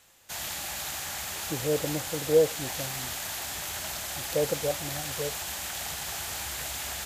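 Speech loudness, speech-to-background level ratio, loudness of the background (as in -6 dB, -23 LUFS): -30.0 LUFS, 3.0 dB, -33.0 LUFS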